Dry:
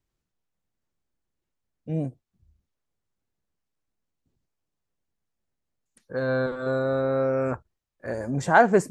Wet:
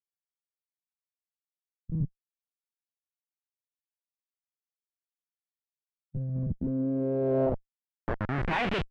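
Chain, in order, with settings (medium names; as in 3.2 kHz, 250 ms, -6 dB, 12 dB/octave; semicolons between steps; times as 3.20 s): Schmitt trigger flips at -26 dBFS; low-pass sweep 140 Hz -> 3 kHz, 6.30–8.88 s; formant shift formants +2 st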